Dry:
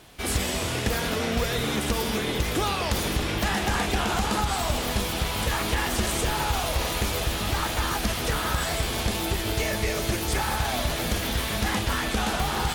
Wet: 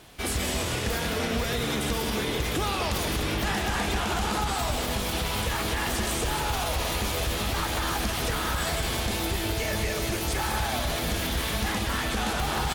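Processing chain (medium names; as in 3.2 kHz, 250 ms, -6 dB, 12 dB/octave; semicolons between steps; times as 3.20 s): peak limiter -19 dBFS, peak gain reduction 4.5 dB; on a send: delay 183 ms -8.5 dB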